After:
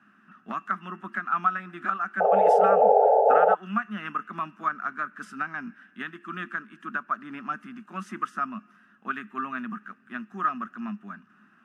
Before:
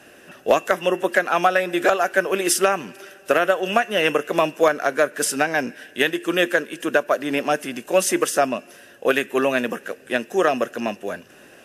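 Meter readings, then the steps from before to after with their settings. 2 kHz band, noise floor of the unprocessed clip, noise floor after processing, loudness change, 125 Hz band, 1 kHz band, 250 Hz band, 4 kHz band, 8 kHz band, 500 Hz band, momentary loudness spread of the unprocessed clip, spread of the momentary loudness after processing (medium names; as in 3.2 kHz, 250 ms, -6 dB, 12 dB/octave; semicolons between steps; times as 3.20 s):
-10.5 dB, -48 dBFS, -60 dBFS, -5.0 dB, -6.5 dB, -0.5 dB, -10.5 dB, -22.5 dB, under -30 dB, -5.5 dB, 9 LU, 20 LU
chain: two resonant band-passes 510 Hz, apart 2.6 oct; painted sound noise, 2.20–3.55 s, 410–890 Hz -20 dBFS; trim +1.5 dB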